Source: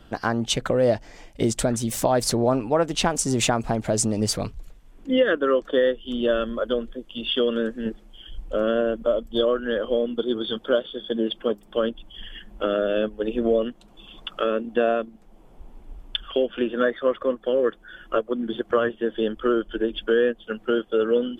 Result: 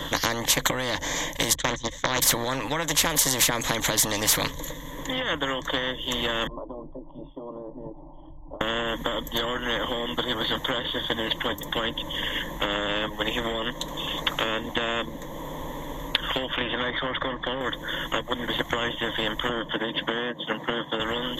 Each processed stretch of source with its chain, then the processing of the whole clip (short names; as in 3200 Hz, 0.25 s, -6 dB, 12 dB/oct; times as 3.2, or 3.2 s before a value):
1.55–2.22 gate -24 dBFS, range -26 dB + air absorption 140 m + Doppler distortion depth 0.89 ms
6.47–8.61 fixed phaser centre 330 Hz, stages 8 + compressor 4:1, threshold -44 dBFS + ladder low-pass 880 Hz, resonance 60%
16.56–17.61 LPF 3300 Hz + compressor 2:1, threshold -27 dBFS
19.49–21 HPF 190 Hz 24 dB/oct + tilt -3.5 dB/oct
whole clip: ripple EQ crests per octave 1.1, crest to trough 17 dB; compressor, threshold -19 dBFS; spectral compressor 4:1; gain +3 dB